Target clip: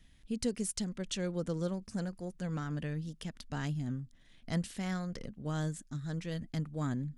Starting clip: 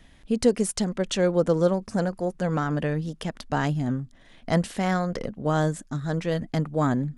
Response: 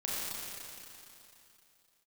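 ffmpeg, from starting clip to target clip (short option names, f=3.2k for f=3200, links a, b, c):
-af "equalizer=f=710:w=0.49:g=-11.5,volume=-6.5dB"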